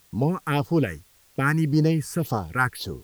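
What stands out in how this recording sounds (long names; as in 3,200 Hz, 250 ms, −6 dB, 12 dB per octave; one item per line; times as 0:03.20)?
phaser sweep stages 4, 1.8 Hz, lowest notch 570–2,400 Hz
a quantiser's noise floor 10 bits, dither triangular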